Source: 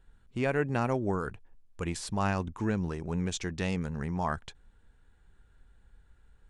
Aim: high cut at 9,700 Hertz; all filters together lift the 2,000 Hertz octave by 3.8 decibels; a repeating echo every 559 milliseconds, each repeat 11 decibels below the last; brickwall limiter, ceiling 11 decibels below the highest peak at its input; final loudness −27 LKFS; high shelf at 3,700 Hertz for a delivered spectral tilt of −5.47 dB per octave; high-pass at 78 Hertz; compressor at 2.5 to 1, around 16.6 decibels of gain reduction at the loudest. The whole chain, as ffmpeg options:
ffmpeg -i in.wav -af "highpass=78,lowpass=9700,equalizer=frequency=2000:width_type=o:gain=7,highshelf=frequency=3700:gain=-7,acompressor=threshold=-50dB:ratio=2.5,alimiter=level_in=18.5dB:limit=-24dB:level=0:latency=1,volume=-18.5dB,aecho=1:1:559|1118|1677:0.282|0.0789|0.0221,volume=26dB" out.wav

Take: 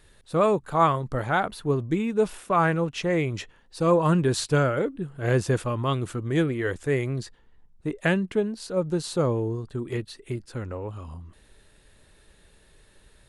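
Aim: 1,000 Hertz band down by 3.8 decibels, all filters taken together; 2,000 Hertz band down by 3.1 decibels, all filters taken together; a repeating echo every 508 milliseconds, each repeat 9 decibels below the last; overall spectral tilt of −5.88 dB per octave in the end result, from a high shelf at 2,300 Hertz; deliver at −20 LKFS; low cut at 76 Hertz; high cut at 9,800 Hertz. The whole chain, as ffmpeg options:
ffmpeg -i in.wav -af "highpass=76,lowpass=9800,equalizer=frequency=1000:width_type=o:gain=-4.5,equalizer=frequency=2000:width_type=o:gain=-4.5,highshelf=frequency=2300:gain=4.5,aecho=1:1:508|1016|1524|2032:0.355|0.124|0.0435|0.0152,volume=6.5dB" out.wav

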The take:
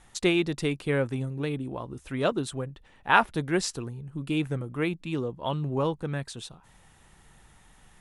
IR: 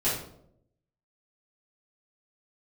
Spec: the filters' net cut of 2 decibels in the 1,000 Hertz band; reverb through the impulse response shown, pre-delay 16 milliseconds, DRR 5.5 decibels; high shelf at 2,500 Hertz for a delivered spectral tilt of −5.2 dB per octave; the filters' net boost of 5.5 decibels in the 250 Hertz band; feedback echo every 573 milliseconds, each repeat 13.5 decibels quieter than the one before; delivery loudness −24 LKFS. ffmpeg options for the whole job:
-filter_complex "[0:a]equalizer=frequency=250:width_type=o:gain=8,equalizer=frequency=1000:width_type=o:gain=-4,highshelf=frequency=2500:gain=6,aecho=1:1:573|1146:0.211|0.0444,asplit=2[link_01][link_02];[1:a]atrim=start_sample=2205,adelay=16[link_03];[link_02][link_03]afir=irnorm=-1:irlink=0,volume=-16dB[link_04];[link_01][link_04]amix=inputs=2:normalize=0,volume=0.5dB"

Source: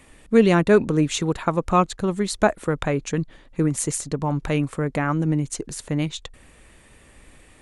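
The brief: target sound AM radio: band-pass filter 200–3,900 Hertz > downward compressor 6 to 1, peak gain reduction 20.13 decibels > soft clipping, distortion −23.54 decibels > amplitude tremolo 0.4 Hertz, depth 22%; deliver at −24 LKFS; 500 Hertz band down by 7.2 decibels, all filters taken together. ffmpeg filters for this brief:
ffmpeg -i in.wav -af "highpass=200,lowpass=3900,equalizer=frequency=500:width_type=o:gain=-9,acompressor=threshold=-37dB:ratio=6,asoftclip=threshold=-26dB,tremolo=f=0.4:d=0.22,volume=19dB" out.wav

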